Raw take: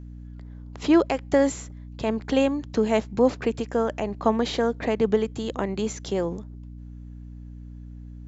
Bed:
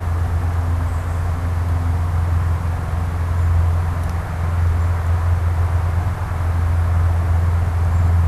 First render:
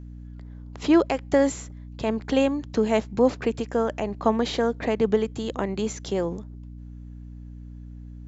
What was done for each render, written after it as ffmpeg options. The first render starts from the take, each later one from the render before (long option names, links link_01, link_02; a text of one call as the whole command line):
ffmpeg -i in.wav -af anull out.wav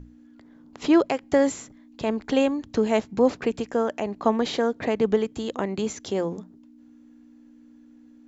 ffmpeg -i in.wav -af "bandreject=frequency=60:width_type=h:width=6,bandreject=frequency=120:width_type=h:width=6,bandreject=frequency=180:width_type=h:width=6" out.wav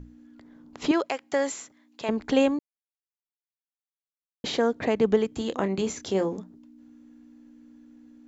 ffmpeg -i in.wav -filter_complex "[0:a]asettb=1/sr,asplit=3[link_01][link_02][link_03];[link_01]atrim=end=0.914[link_04];[link_02]atrim=start=0.91:end=2.09,asetpts=PTS-STARTPTS,afade=type=in:duration=0.004:curve=qsin,afade=type=out:start_time=1.176:duration=0.004:curve=qsin,highpass=frequency=830:poles=1[link_05];[link_03]atrim=start=2.086[link_06];[link_04][link_05]acrossfade=duration=0.004:curve1=hsin:curve2=qsin[link_07];[link_07][link_06]acrossfade=duration=0.004:curve1=qsin:curve2=hsin,asettb=1/sr,asplit=3[link_08][link_09][link_10];[link_08]atrim=end=5.304[link_11];[link_09]atrim=start=5.3:end=6.37,asetpts=PTS-STARTPTS,afade=type=in:duration=0.004:curve=qsin,afade=type=out:start_time=1.066:duration=0.004:curve=qsin,asplit=2[link_12][link_13];[link_13]adelay=26,volume=-9.5dB[link_14];[link_12][link_14]amix=inputs=2:normalize=0,atrim=end_sample=47187[link_15];[link_10]atrim=start=6.366[link_16];[link_11][link_15]acrossfade=duration=0.004:curve1=hsin:curve2=qsin[link_17];[link_17][link_16]acrossfade=duration=0.004:curve1=qsin:curve2=hsin,asplit=3[link_18][link_19][link_20];[link_18]atrim=end=2.59,asetpts=PTS-STARTPTS,afade=type=out:start_time=2.586:duration=0.004:curve=hsin[link_21];[link_19]atrim=start=2.59:end=4.44,asetpts=PTS-STARTPTS,volume=0[link_22];[link_20]atrim=start=4.44,asetpts=PTS-STARTPTS,afade=type=in:duration=0.004:curve=hsin[link_23];[link_21][link_22][link_23]concat=n=3:v=0:a=1" out.wav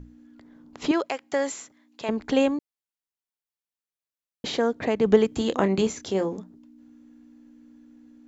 ffmpeg -i in.wav -filter_complex "[0:a]asplit=3[link_01][link_02][link_03];[link_01]atrim=end=5.062[link_04];[link_02]atrim=start=5.058:end=5.872,asetpts=PTS-STARTPTS,volume=4.5dB[link_05];[link_03]atrim=start=5.868[link_06];[link_04][link_05]acrossfade=duration=0.004:curve1=hsin:curve2=hsin[link_07];[link_07][link_06]acrossfade=duration=0.004:curve1=hsin:curve2=hsin" out.wav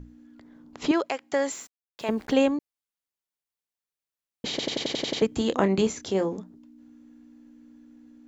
ffmpeg -i in.wav -filter_complex "[0:a]asettb=1/sr,asplit=3[link_01][link_02][link_03];[link_01]atrim=end=1.514[link_04];[link_02]atrim=start=1.51:end=2.39,asetpts=PTS-STARTPTS,afade=type=in:duration=0.004:curve=qsin,afade=type=out:start_time=0.876:duration=0.004:curve=qsin,aeval=exprs='val(0)*gte(abs(val(0)),0.00398)':channel_layout=same[link_05];[link_03]atrim=start=2.386[link_06];[link_04][link_05]acrossfade=duration=0.004:curve1=hsin:curve2=qsin[link_07];[link_07][link_06]acrossfade=duration=0.004:curve1=qsin:curve2=hsin,asplit=9[link_08][link_09][link_10][link_11][link_12][link_13][link_14][link_15][link_16];[link_08]atrim=end=4.592[link_17];[link_09]atrim=start=4.498:end=4.592[link_18];[link_10]atrim=start=4.498:end=4.592[link_19];[link_11]atrim=start=4.498:end=4.592[link_20];[link_12]atrim=start=4.498:end=4.592[link_21];[link_13]atrim=start=4.498:end=4.592[link_22];[link_14]atrim=start=4.498:end=4.592[link_23];[link_15]atrim=start=4.498:end=4.592[link_24];[link_16]atrim=start=5.218[link_25];[link_17][link_18]acrossfade=duration=0.004:curve1=hsin:curve2=hsin[link_26];[link_26][link_19]acrossfade=duration=0.004:curve1=hsin:curve2=hsin[link_27];[link_27][link_20]acrossfade=duration=0.004:curve1=hsin:curve2=hsin[link_28];[link_28][link_21]acrossfade=duration=0.004:curve1=hsin:curve2=hsin[link_29];[link_29][link_22]acrossfade=duration=0.004:curve1=hsin:curve2=hsin[link_30];[link_30][link_23]acrossfade=duration=0.004:curve1=hsin:curve2=hsin[link_31];[link_31][link_24]acrossfade=duration=0.004:curve1=hsin:curve2=hsin[link_32];[link_32][link_25]acrossfade=duration=0.004:curve1=hsin:curve2=hsin" out.wav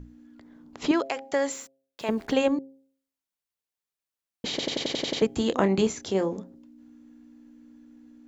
ffmpeg -i in.wav -af "bandreject=frequency=134.7:width_type=h:width=4,bandreject=frequency=269.4:width_type=h:width=4,bandreject=frequency=404.1:width_type=h:width=4,bandreject=frequency=538.8:width_type=h:width=4,bandreject=frequency=673.5:width_type=h:width=4,bandreject=frequency=808.2:width_type=h:width=4" out.wav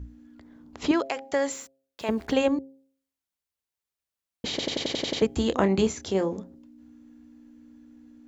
ffmpeg -i in.wav -af "equalizer=frequency=70:width_type=o:width=0.61:gain=11.5" out.wav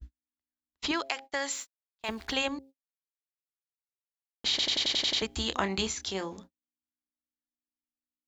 ffmpeg -i in.wav -af "agate=range=-42dB:threshold=-39dB:ratio=16:detection=peak,equalizer=frequency=125:width_type=o:width=1:gain=-12,equalizer=frequency=250:width_type=o:width=1:gain=-7,equalizer=frequency=500:width_type=o:width=1:gain=-11,equalizer=frequency=4000:width_type=o:width=1:gain=6" out.wav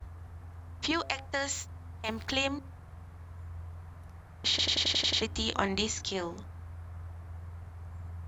ffmpeg -i in.wav -i bed.wav -filter_complex "[1:a]volume=-27dB[link_01];[0:a][link_01]amix=inputs=2:normalize=0" out.wav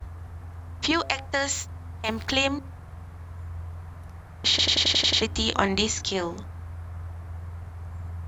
ffmpeg -i in.wav -af "volume=6.5dB" out.wav